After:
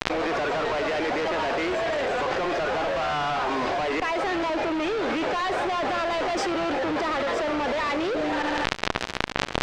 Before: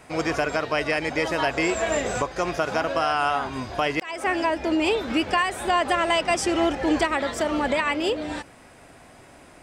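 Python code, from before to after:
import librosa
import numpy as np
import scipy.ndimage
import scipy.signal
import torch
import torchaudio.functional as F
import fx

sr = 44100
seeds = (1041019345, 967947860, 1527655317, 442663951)

y = scipy.signal.sosfilt(scipy.signal.butter(4, 330.0, 'highpass', fs=sr, output='sos'), x)
y = fx.high_shelf(y, sr, hz=3100.0, db=-10.5)
y = fx.fuzz(y, sr, gain_db=42.0, gate_db=-44.0)
y = fx.air_absorb(y, sr, metres=150.0)
y = fx.echo_feedback(y, sr, ms=74, feedback_pct=39, wet_db=-17.0)
y = fx.env_flatten(y, sr, amount_pct=100)
y = y * 10.0 ** (-12.0 / 20.0)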